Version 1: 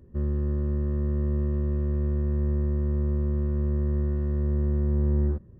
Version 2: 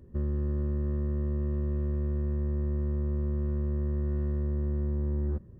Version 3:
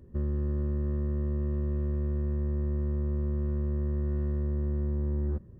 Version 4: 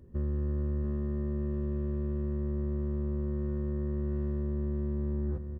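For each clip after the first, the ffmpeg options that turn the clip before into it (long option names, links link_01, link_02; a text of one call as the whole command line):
ffmpeg -i in.wav -af "alimiter=limit=-22.5dB:level=0:latency=1:release=43" out.wav
ffmpeg -i in.wav -af anull out.wav
ffmpeg -i in.wav -af "aecho=1:1:691:0.398,volume=-1.5dB" out.wav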